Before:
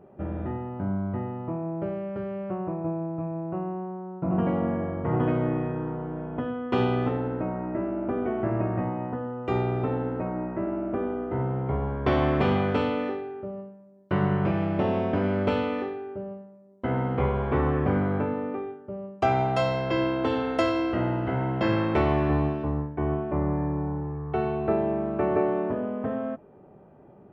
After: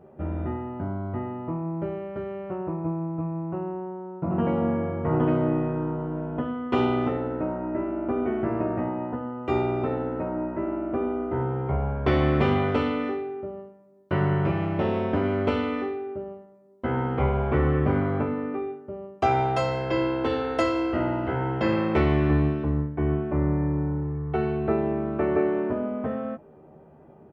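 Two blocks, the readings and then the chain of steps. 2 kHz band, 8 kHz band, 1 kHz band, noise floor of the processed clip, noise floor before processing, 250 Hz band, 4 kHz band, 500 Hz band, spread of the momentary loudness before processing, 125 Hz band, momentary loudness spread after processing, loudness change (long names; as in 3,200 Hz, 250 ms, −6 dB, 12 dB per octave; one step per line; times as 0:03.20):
+1.0 dB, can't be measured, +0.5 dB, −51 dBFS, −51 dBFS, +1.0 dB, 0.0 dB, +1.0 dB, 9 LU, +1.5 dB, 10 LU, +1.0 dB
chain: double-tracking delay 13 ms −5 dB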